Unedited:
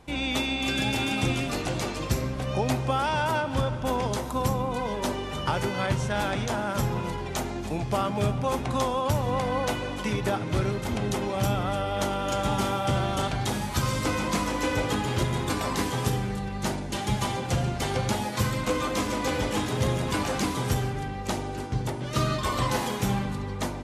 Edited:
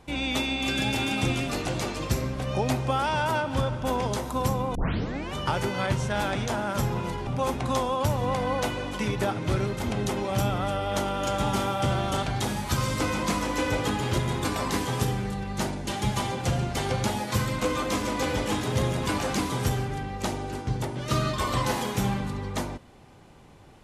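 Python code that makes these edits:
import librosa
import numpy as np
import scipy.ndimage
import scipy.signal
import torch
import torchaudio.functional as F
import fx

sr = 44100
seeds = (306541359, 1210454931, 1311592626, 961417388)

y = fx.edit(x, sr, fx.tape_start(start_s=4.75, length_s=0.59),
    fx.cut(start_s=7.27, length_s=1.05), tone=tone)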